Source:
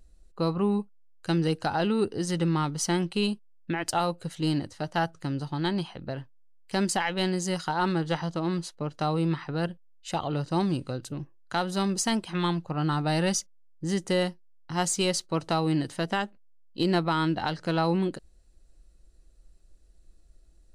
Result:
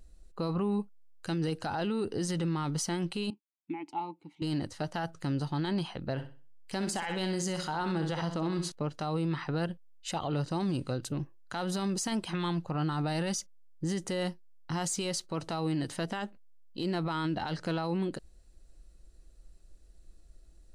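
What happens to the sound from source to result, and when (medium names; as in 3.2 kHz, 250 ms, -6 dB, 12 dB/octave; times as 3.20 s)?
3.30–4.42 s: vowel filter u
6.13–8.72 s: flutter echo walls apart 10.8 m, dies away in 0.36 s
whole clip: peak limiter -26 dBFS; trim +1.5 dB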